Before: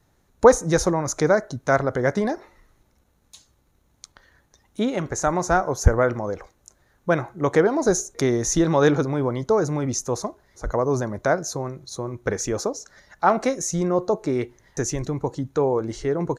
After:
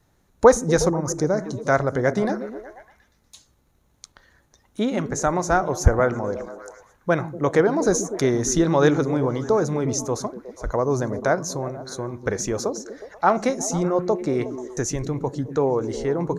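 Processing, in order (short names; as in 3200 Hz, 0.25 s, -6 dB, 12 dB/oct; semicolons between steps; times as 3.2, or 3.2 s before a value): 0.89–1.39 EQ curve 280 Hz 0 dB, 3100 Hz -15 dB, 5400 Hz -1 dB; on a send: delay with a stepping band-pass 0.121 s, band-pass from 190 Hz, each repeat 0.7 oct, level -6.5 dB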